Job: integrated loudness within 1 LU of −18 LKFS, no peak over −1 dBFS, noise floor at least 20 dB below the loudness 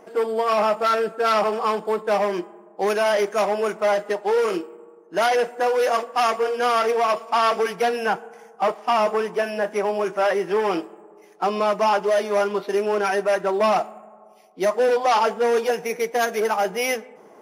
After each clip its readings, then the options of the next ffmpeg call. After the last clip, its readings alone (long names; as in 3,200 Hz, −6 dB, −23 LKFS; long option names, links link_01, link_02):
integrated loudness −22.0 LKFS; sample peak −11.5 dBFS; target loudness −18.0 LKFS
→ -af "volume=4dB"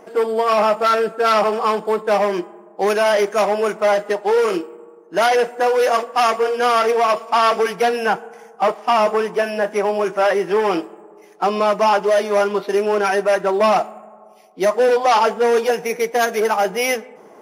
integrated loudness −18.0 LKFS; sample peak −7.5 dBFS; background noise floor −45 dBFS